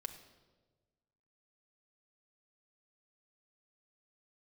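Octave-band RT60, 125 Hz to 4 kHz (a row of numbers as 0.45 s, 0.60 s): 1.8 s, 1.6 s, 1.5 s, 1.1 s, 0.95 s, 0.95 s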